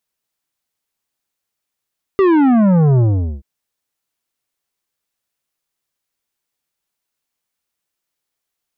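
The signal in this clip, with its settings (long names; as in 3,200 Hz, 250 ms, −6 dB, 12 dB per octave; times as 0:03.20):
bass drop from 400 Hz, over 1.23 s, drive 11 dB, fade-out 0.43 s, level −10 dB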